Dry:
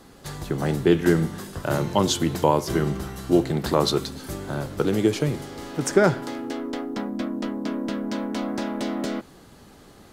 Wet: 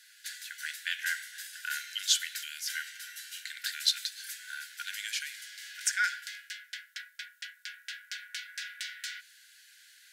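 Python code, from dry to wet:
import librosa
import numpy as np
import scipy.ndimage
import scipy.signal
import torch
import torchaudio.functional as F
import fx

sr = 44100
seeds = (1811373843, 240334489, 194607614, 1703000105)

y = fx.brickwall_highpass(x, sr, low_hz=1400.0)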